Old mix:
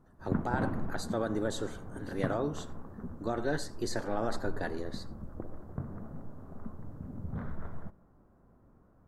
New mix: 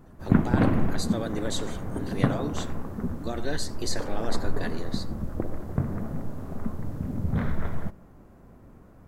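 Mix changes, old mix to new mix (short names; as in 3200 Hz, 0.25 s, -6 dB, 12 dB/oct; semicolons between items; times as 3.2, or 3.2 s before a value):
background +11.5 dB; master: add resonant high shelf 1800 Hz +7.5 dB, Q 1.5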